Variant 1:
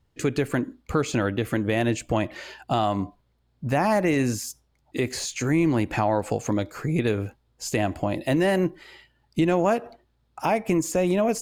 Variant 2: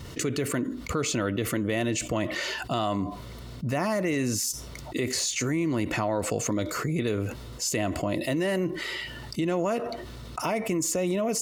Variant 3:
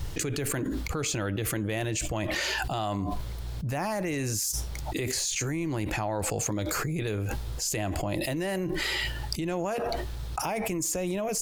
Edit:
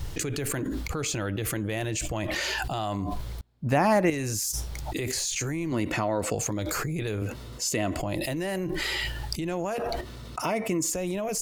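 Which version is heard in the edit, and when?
3
3.41–4.10 s: from 1
5.72–6.35 s: from 2
7.22–7.99 s: from 2
10.01–10.90 s: from 2

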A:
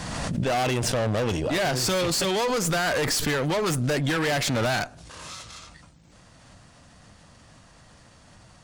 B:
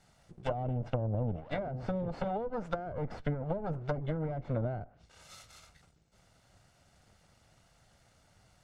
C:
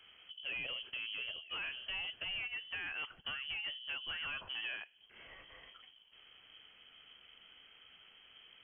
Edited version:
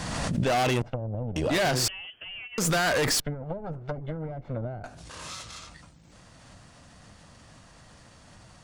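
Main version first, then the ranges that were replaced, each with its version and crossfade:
A
0.82–1.36 s: from B
1.88–2.58 s: from C
3.20–4.84 s: from B

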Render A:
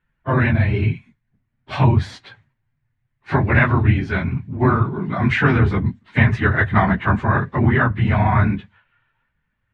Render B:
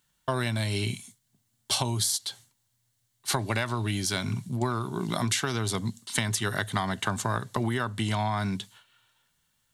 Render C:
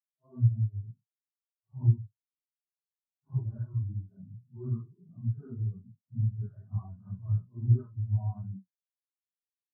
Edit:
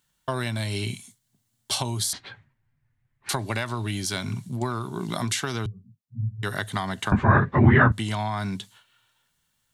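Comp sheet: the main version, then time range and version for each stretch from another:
B
2.13–3.29 s: from A
5.66–6.43 s: from C
7.12–7.92 s: from A

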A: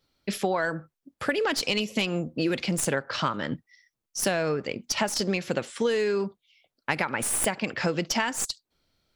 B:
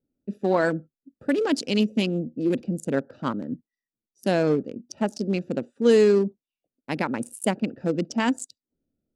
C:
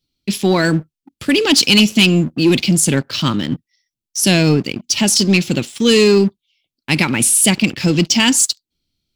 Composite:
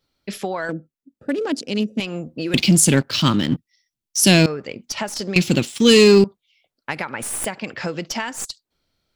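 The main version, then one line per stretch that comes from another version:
A
0.69–2.00 s: from B
2.54–4.46 s: from C
5.36–6.24 s: from C

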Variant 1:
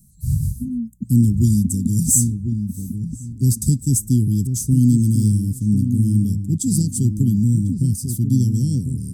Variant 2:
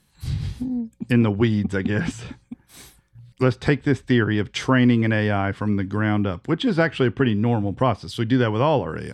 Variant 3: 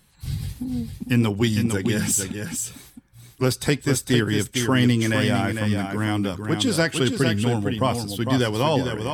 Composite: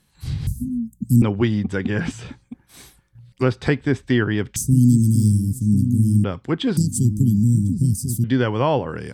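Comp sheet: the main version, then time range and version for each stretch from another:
2
0.47–1.22 s: from 1
4.56–6.24 s: from 1
6.77–8.24 s: from 1
not used: 3

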